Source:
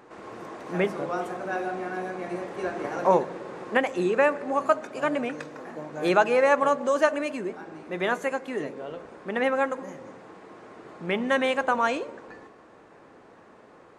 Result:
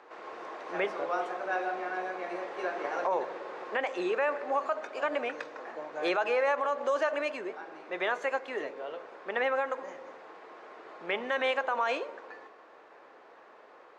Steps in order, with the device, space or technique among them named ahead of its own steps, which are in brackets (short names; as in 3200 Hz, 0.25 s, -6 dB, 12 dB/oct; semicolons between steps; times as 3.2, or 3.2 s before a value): DJ mixer with the lows and highs turned down (three-band isolator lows -24 dB, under 390 Hz, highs -23 dB, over 5900 Hz; limiter -20 dBFS, peak gain reduction 11 dB)